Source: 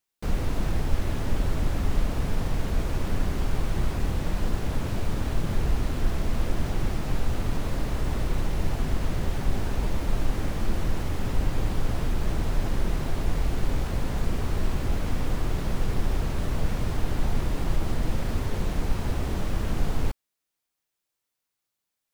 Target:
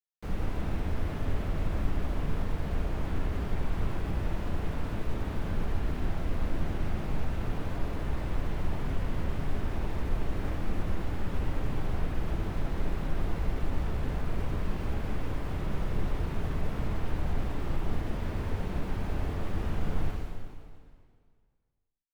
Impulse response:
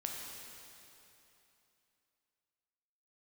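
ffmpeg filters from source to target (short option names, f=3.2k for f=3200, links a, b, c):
-filter_complex "[0:a]bass=f=250:g=0,treble=f=4k:g=-7,acrusher=bits=8:mix=0:aa=0.000001[a];[1:a]atrim=start_sample=2205,asetrate=66150,aresample=44100[b];[a][b]afir=irnorm=-1:irlink=0,acrossover=split=310|780|3500[c][d][e][f];[f]alimiter=level_in=26.5dB:limit=-24dB:level=0:latency=1:release=62,volume=-26.5dB[g];[c][d][e][g]amix=inputs=4:normalize=0,volume=-1dB"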